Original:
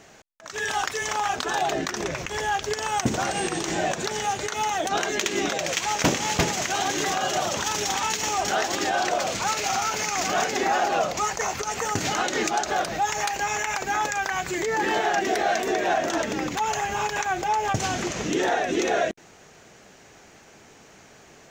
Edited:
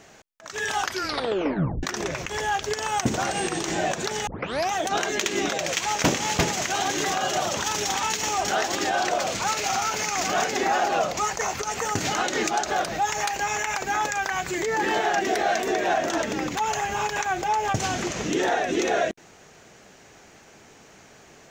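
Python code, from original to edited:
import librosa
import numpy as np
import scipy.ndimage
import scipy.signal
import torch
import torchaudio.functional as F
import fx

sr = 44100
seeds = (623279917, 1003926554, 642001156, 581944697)

y = fx.edit(x, sr, fx.tape_stop(start_s=0.82, length_s=1.01),
    fx.tape_start(start_s=4.27, length_s=0.45), tone=tone)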